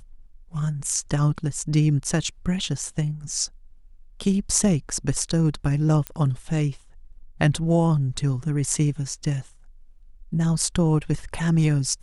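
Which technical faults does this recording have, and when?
0:06.07: click −12 dBFS

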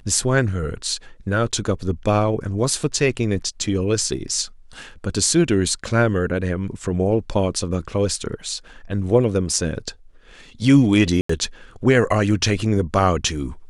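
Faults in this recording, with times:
0:11.21–0:11.29: drop-out 84 ms

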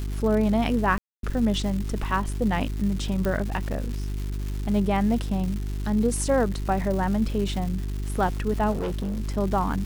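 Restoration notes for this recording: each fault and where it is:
surface crackle 410 per second −32 dBFS
mains hum 50 Hz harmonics 8 −29 dBFS
0:00.98–0:01.23: drop-out 252 ms
0:03.25: click
0:08.71–0:09.21: clipping −24.5 dBFS

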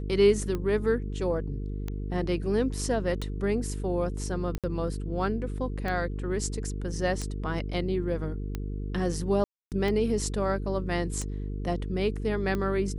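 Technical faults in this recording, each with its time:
mains buzz 50 Hz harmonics 9 −33 dBFS
scratch tick 45 rpm −19 dBFS
0:04.58–0:04.64: drop-out 57 ms
0:09.44–0:09.72: drop-out 278 ms

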